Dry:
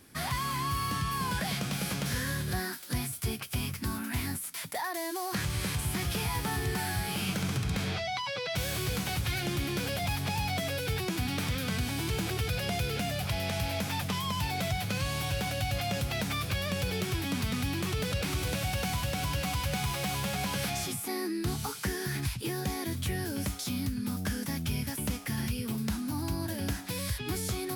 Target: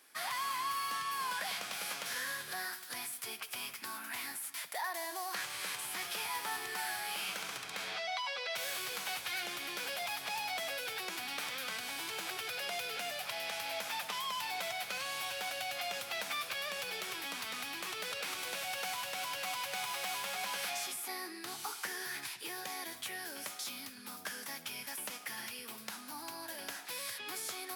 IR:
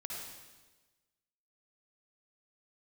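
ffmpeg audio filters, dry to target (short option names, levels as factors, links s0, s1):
-filter_complex "[0:a]highpass=730,asplit=2[s0][s1];[1:a]atrim=start_sample=2205,lowpass=4400[s2];[s1][s2]afir=irnorm=-1:irlink=0,volume=0.335[s3];[s0][s3]amix=inputs=2:normalize=0,volume=0.668"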